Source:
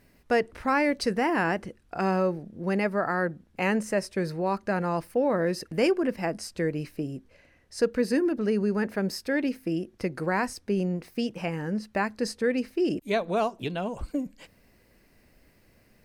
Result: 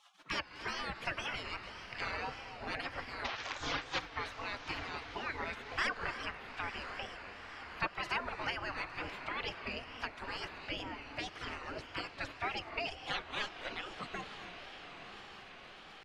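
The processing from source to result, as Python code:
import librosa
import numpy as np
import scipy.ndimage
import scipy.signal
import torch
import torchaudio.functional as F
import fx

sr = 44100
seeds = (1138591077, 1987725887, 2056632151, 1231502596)

y = fx.delta_mod(x, sr, bps=32000, step_db=-25.0, at=(3.25, 3.99))
y = fx.dereverb_blind(y, sr, rt60_s=0.72)
y = fx.spec_gate(y, sr, threshold_db=-30, keep='weak')
y = scipy.signal.sosfilt(scipy.signal.butter(2, 2400.0, 'lowpass', fs=sr, output='sos'), y)
y = fx.echo_diffused(y, sr, ms=1011, feedback_pct=51, wet_db=-13.5)
y = fx.rev_gated(y, sr, seeds[0], gate_ms=320, shape='rising', drr_db=11.5)
y = fx.wow_flutter(y, sr, seeds[1], rate_hz=2.1, depth_cents=120.0)
y = fx.band_squash(y, sr, depth_pct=40)
y = y * librosa.db_to_amplitude(15.5)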